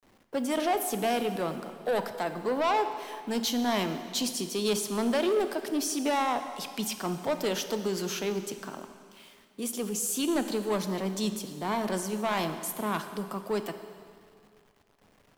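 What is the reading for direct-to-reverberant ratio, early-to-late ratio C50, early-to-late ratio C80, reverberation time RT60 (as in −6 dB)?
8.5 dB, 9.5 dB, 10.5 dB, 2.2 s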